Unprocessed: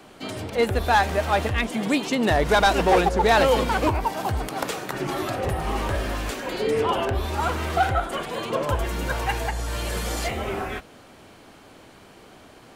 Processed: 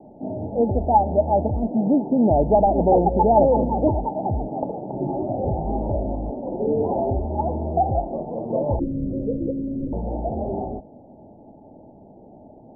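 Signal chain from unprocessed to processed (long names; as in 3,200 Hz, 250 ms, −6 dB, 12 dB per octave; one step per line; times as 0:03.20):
Chebyshev low-pass with heavy ripple 890 Hz, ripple 6 dB
0:08.79–0:09.93: frequency shifter −330 Hz
level +6.5 dB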